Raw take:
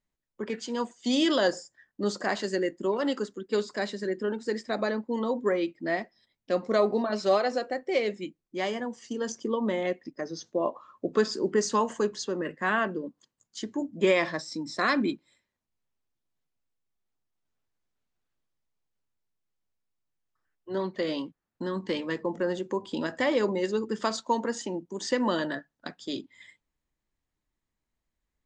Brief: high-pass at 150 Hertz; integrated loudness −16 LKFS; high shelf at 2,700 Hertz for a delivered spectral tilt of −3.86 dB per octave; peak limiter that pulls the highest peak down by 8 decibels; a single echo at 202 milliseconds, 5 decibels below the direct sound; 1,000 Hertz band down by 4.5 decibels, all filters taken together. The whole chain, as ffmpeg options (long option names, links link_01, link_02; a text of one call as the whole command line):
ffmpeg -i in.wav -af "highpass=150,equalizer=frequency=1000:width_type=o:gain=-5,highshelf=frequency=2700:gain=-5,alimiter=limit=-21.5dB:level=0:latency=1,aecho=1:1:202:0.562,volume=16dB" out.wav